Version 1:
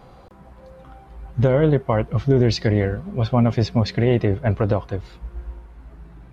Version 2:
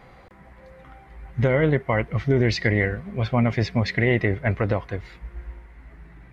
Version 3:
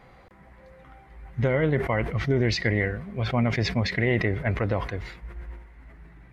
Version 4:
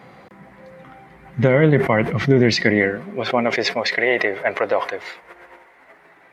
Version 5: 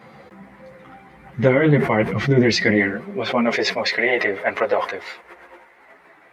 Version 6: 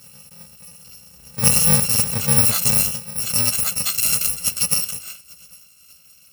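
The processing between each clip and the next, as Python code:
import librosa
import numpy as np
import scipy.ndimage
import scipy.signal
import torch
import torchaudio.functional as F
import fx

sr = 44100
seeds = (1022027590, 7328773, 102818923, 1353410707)

y1 = fx.peak_eq(x, sr, hz=2000.0, db=14.5, octaves=0.55)
y1 = y1 * 10.0 ** (-3.5 / 20.0)
y2 = fx.sustainer(y1, sr, db_per_s=75.0)
y2 = y2 * 10.0 ** (-3.5 / 20.0)
y3 = fx.filter_sweep_highpass(y2, sr, from_hz=170.0, to_hz=550.0, start_s=2.39, end_s=3.86, q=1.3)
y3 = y3 * 10.0 ** (8.0 / 20.0)
y4 = fx.ensemble(y3, sr)
y4 = y4 * 10.0 ** (3.0 / 20.0)
y5 = fx.bit_reversed(y4, sr, seeds[0], block=128)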